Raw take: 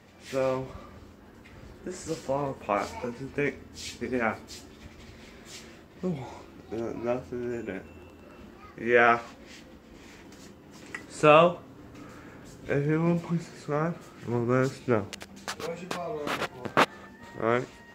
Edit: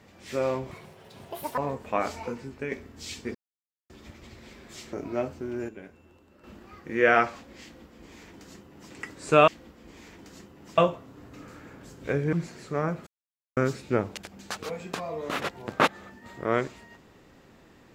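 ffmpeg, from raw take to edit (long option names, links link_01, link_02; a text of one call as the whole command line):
ffmpeg -i in.wav -filter_complex "[0:a]asplit=14[link_01][link_02][link_03][link_04][link_05][link_06][link_07][link_08][link_09][link_10][link_11][link_12][link_13][link_14];[link_01]atrim=end=0.714[link_15];[link_02]atrim=start=0.71:end=2.34,asetpts=PTS-STARTPTS,asetrate=82908,aresample=44100[link_16];[link_03]atrim=start=2.336:end=3.48,asetpts=PTS-STARTPTS,afade=type=out:start_time=0.774:duration=0.37:silence=0.421697[link_17];[link_04]atrim=start=3.48:end=4.11,asetpts=PTS-STARTPTS,afade=type=in:duration=0.004:curve=hsin:silence=0.421697,afade=type=out:start_time=0.626:duration=0.004:curve=hsin[link_18];[link_05]atrim=start=4.11:end=4.66,asetpts=PTS-STARTPTS,volume=0[link_19];[link_06]atrim=start=4.66:end=5.692,asetpts=PTS-STARTPTS,afade=type=in:duration=0.004:curve=hsin[link_20];[link_07]atrim=start=6.838:end=7.602[link_21];[link_08]atrim=start=7.598:end=8.352,asetpts=PTS-STARTPTS,volume=-9dB[link_22];[link_09]atrim=start=8.348:end=11.392[link_23];[link_10]atrim=start=9.538:end=10.842[link_24];[link_11]atrim=start=11.388:end=12.942[link_25];[link_12]atrim=start=13.298:end=14.04,asetpts=PTS-STARTPTS,afade=type=out:start_time=0.738:duration=0.004:curve=hsin[link_26];[link_13]atrim=start=14.04:end=14.54,asetpts=PTS-STARTPTS,volume=0[link_27];[link_14]atrim=start=14.54,asetpts=PTS-STARTPTS,afade=type=in:duration=0.004:curve=hsin[link_28];[link_15][link_16]acrossfade=duration=0.004:curve1=hsin:curve2=hsin[link_29];[link_17][link_18][link_19][link_20]concat=n=4:v=0:a=1[link_30];[link_29][link_30]acrossfade=duration=0.004:curve1=hsin:curve2=hsin[link_31];[link_31][link_21]acrossfade=duration=0.004:curve1=hsin:curve2=hsin[link_32];[link_32][link_22]acrossfade=duration=0.004:curve1=hsin:curve2=hsin[link_33];[link_33][link_23]acrossfade=duration=0.004:curve1=hsin:curve2=hsin[link_34];[link_34][link_24]acrossfade=duration=0.004:curve1=hsin:curve2=hsin[link_35];[link_35][link_25]acrossfade=duration=0.004:curve1=hsin:curve2=hsin[link_36];[link_26][link_27][link_28]concat=n=3:v=0:a=1[link_37];[link_36][link_37]acrossfade=duration=0.004:curve1=hsin:curve2=hsin" out.wav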